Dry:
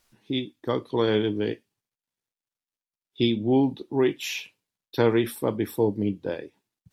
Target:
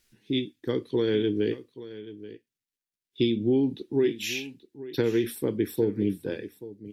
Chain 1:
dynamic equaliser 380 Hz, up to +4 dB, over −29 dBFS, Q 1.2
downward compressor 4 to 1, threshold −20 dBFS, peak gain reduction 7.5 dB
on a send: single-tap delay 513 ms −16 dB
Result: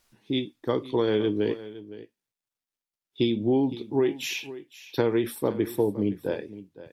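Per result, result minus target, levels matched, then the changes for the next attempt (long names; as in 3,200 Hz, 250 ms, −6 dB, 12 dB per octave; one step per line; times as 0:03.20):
1,000 Hz band +10.0 dB; echo 318 ms early
add after downward compressor: flat-topped bell 850 Hz −11 dB 1.4 octaves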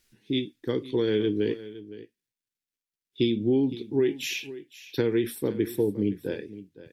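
echo 318 ms early
change: single-tap delay 831 ms −16 dB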